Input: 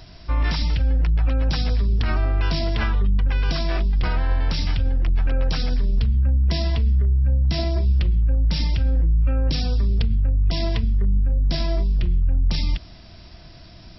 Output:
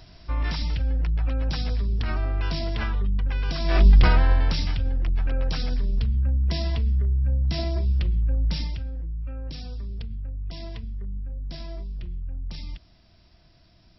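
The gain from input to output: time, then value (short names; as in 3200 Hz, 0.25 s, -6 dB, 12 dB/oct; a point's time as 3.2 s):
3.58 s -5 dB
3.87 s +8 dB
4.74 s -4 dB
8.51 s -4 dB
8.91 s -13.5 dB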